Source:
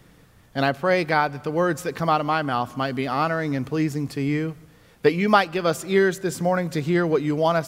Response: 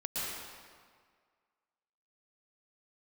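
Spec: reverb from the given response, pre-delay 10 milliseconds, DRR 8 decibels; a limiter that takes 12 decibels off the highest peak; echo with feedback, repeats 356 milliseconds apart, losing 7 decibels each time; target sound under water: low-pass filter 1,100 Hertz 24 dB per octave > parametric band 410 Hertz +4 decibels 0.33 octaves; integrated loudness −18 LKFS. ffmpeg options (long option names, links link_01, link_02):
-filter_complex "[0:a]alimiter=limit=-15.5dB:level=0:latency=1,aecho=1:1:356|712|1068|1424|1780:0.447|0.201|0.0905|0.0407|0.0183,asplit=2[link_01][link_02];[1:a]atrim=start_sample=2205,adelay=10[link_03];[link_02][link_03]afir=irnorm=-1:irlink=0,volume=-13dB[link_04];[link_01][link_04]amix=inputs=2:normalize=0,lowpass=frequency=1100:width=0.5412,lowpass=frequency=1100:width=1.3066,equalizer=frequency=410:width_type=o:width=0.33:gain=4,volume=7.5dB"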